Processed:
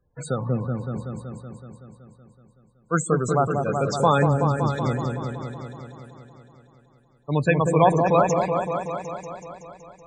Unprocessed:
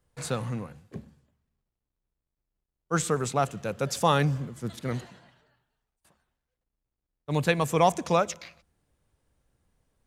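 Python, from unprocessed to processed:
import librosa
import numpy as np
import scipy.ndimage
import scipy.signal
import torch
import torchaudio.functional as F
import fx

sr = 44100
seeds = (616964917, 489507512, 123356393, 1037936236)

y = fx.cheby_harmonics(x, sr, harmonics=(8,), levels_db=(-35,), full_scale_db=-6.5)
y = fx.spec_topn(y, sr, count=32)
y = fx.echo_opening(y, sr, ms=188, hz=750, octaves=1, feedback_pct=70, wet_db=-3)
y = F.gain(torch.from_numpy(y), 4.0).numpy()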